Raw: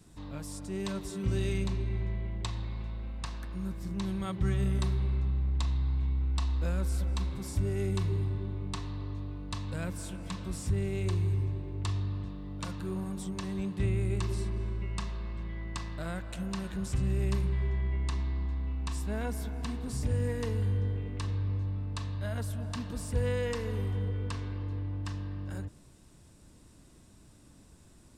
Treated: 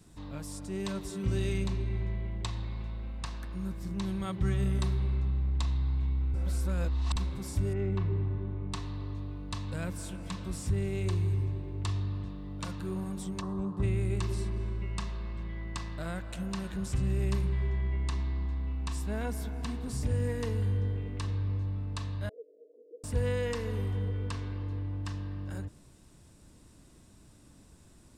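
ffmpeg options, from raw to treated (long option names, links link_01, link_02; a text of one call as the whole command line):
ffmpeg -i in.wav -filter_complex "[0:a]asettb=1/sr,asplit=3[link_01][link_02][link_03];[link_01]atrim=end=7.734[link_04];[link_02]atrim=start=7.73:end=8.72,asetpts=PTS-STARTPTS,afade=type=in:duration=0.004:curve=qsin,afade=type=out:start_time=0.986:duration=0.004:curve=qsin,lowpass=2200[link_05];[link_03]atrim=start=8.716[link_06];[link_04][link_05]acrossfade=duration=0.004:curve1=hsin:curve2=qsin[link_07];[link_07][link_06]acrossfade=duration=0.004:curve1=qsin:curve2=hsin,asplit=3[link_08][link_09][link_10];[link_08]afade=type=out:start_time=13.4:duration=0.02[link_11];[link_09]highshelf=frequency=1600:width_type=q:width=3:gain=-11,afade=type=in:start_time=13.4:duration=0.02,afade=type=out:start_time=13.82:duration=0.02[link_12];[link_10]afade=type=in:start_time=13.82:duration=0.02[link_13];[link_11][link_12][link_13]amix=inputs=3:normalize=0,asettb=1/sr,asplit=3[link_14][link_15][link_16];[link_14]atrim=end=22.294[link_17];[link_15]atrim=start=22.29:end=23.04,asetpts=PTS-STARTPTS,afade=type=in:duration=0.004:curve=qsin,afade=type=out:start_time=0.746:duration=0.004:curve=qsin,asuperpass=centerf=430:order=8:qfactor=2.5[link_18];[link_16]atrim=start=23.036[link_19];[link_17][link_18]acrossfade=duration=0.004:curve1=hsin:curve2=qsin[link_20];[link_20][link_19]acrossfade=duration=0.004:curve1=qsin:curve2=hsin,asplit=3[link_21][link_22][link_23];[link_21]atrim=end=6.342[link_24];[link_22]atrim=start=6.338:end=7.162,asetpts=PTS-STARTPTS,areverse[link_25];[link_23]atrim=start=7.158[link_26];[link_24][link_25]acrossfade=duration=0.004:curve1=hsin:curve2=hsin[link_27];[link_27][link_26]acrossfade=duration=0.004:curve1=hsin:curve2=hsin" out.wav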